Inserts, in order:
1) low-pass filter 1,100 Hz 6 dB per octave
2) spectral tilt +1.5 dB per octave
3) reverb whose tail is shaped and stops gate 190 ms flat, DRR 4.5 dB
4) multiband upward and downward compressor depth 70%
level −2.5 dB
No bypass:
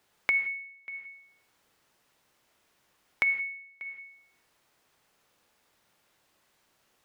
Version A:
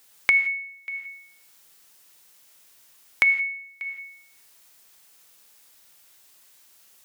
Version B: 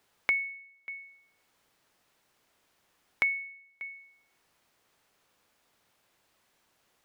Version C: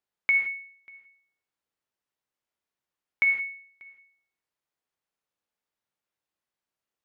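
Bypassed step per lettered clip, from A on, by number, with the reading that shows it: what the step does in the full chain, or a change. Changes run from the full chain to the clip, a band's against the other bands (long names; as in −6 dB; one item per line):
1, change in integrated loudness +7.0 LU
3, change in momentary loudness spread −2 LU
4, change in crest factor −6.0 dB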